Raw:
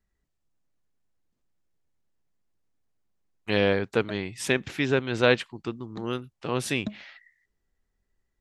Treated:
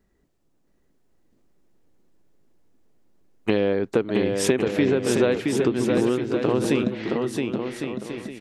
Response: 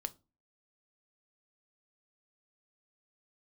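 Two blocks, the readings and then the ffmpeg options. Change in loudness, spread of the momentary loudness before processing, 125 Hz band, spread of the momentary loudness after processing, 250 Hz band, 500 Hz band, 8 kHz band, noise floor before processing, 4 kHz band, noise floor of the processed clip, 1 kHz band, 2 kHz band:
+4.0 dB, 13 LU, +3.0 dB, 9 LU, +8.5 dB, +5.5 dB, +6.5 dB, −79 dBFS, −1.0 dB, −66 dBFS, +1.5 dB, −2.5 dB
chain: -filter_complex "[0:a]equalizer=frequency=340:width=0.57:gain=12,acompressor=threshold=-26dB:ratio=6,asplit=2[link_01][link_02];[link_02]aecho=0:1:670|1106|1389|1573|1692:0.631|0.398|0.251|0.158|0.1[link_03];[link_01][link_03]amix=inputs=2:normalize=0,volume=7dB"

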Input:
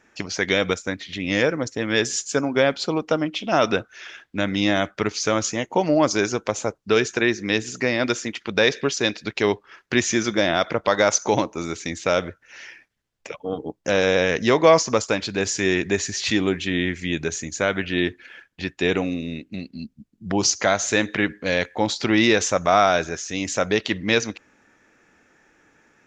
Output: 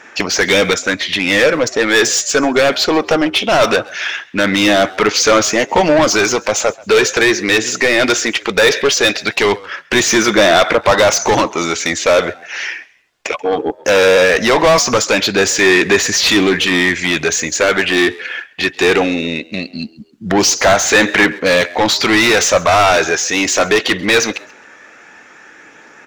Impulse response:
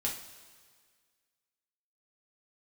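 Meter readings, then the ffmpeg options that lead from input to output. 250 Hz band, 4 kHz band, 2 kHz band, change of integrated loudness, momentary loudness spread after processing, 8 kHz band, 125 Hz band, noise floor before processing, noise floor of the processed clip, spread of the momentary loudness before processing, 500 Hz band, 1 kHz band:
+6.5 dB, +11.5 dB, +11.5 dB, +9.0 dB, 9 LU, +10.5 dB, +3.5 dB, −64 dBFS, −43 dBFS, 12 LU, +8.5 dB, +9.0 dB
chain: -filter_complex "[0:a]asplit=2[link_01][link_02];[link_02]highpass=frequency=720:poles=1,volume=26dB,asoftclip=type=tanh:threshold=-2.5dB[link_03];[link_01][link_03]amix=inputs=2:normalize=0,lowpass=frequency=4700:poles=1,volume=-6dB,aphaser=in_gain=1:out_gain=1:delay=2.8:decay=0.22:speed=0.19:type=sinusoidal,asplit=3[link_04][link_05][link_06];[link_05]adelay=134,afreqshift=78,volume=-23dB[link_07];[link_06]adelay=268,afreqshift=156,volume=-32.1dB[link_08];[link_04][link_07][link_08]amix=inputs=3:normalize=0"

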